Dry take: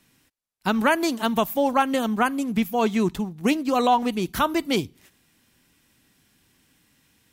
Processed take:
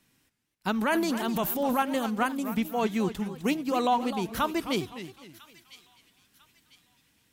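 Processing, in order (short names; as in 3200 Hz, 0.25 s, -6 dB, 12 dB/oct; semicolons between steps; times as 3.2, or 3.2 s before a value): 0.81–1.79 transient shaper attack -5 dB, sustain +9 dB; thin delay 0.998 s, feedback 38%, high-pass 2400 Hz, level -15 dB; warbling echo 0.259 s, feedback 33%, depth 214 cents, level -12 dB; gain -5.5 dB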